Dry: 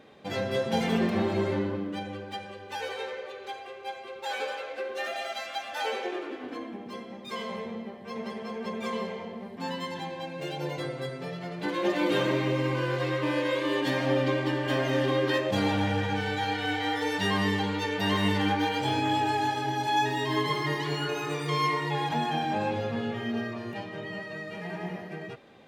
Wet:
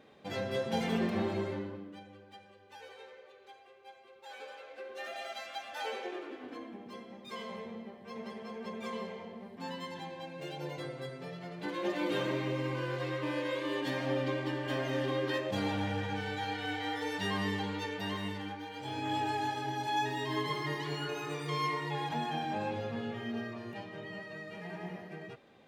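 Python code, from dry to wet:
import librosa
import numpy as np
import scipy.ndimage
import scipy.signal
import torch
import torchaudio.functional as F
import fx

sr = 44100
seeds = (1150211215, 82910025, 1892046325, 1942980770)

y = fx.gain(x, sr, db=fx.line((1.28, -5.5), (2.07, -16.0), (4.24, -16.0), (5.25, -7.0), (17.82, -7.0), (18.65, -17.0), (19.16, -6.5)))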